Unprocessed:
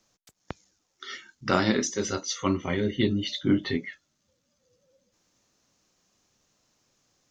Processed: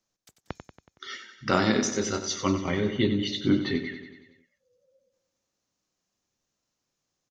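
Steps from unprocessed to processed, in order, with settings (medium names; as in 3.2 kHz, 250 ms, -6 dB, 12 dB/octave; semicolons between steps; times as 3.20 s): spectral noise reduction 12 dB; on a send: feedback delay 93 ms, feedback 59%, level -10 dB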